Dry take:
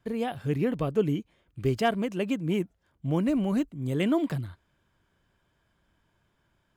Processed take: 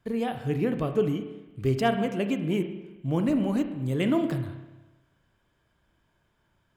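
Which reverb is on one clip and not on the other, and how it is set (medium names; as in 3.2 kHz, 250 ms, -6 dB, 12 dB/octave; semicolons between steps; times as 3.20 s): spring tank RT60 1.1 s, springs 30/39 ms, chirp 35 ms, DRR 7 dB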